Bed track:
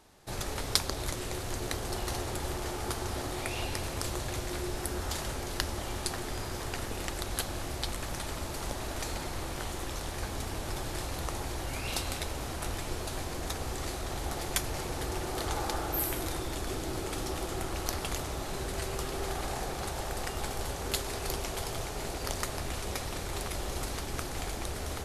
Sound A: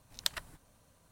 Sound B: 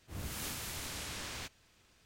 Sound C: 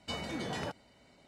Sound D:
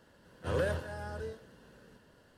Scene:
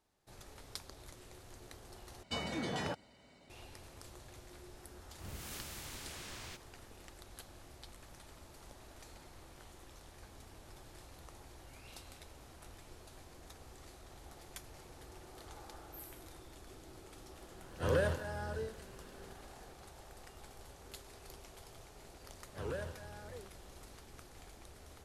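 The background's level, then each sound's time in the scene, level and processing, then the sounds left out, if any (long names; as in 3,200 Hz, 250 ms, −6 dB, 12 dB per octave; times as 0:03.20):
bed track −19 dB
0:02.23: overwrite with C −0.5 dB
0:05.09: mix in B −6 dB
0:17.36: mix in D
0:22.12: mix in D −9.5 dB + wow of a warped record 78 rpm, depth 250 cents
not used: A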